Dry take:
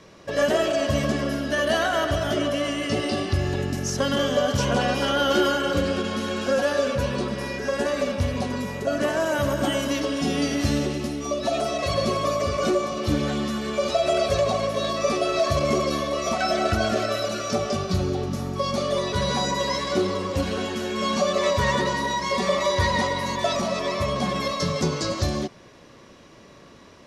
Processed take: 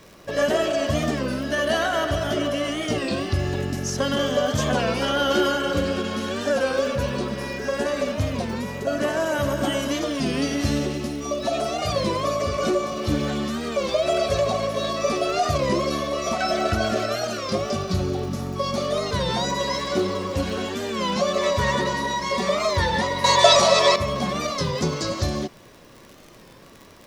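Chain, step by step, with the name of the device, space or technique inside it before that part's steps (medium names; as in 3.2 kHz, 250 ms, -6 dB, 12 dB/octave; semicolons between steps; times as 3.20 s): 23.24–23.96 s: graphic EQ 125/250/500/1000/2000/4000/8000 Hz +7/-9/+10/+8/+5/+11/+12 dB; warped LP (warped record 33 1/3 rpm, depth 160 cents; crackle 70 per s -35 dBFS; pink noise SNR 34 dB)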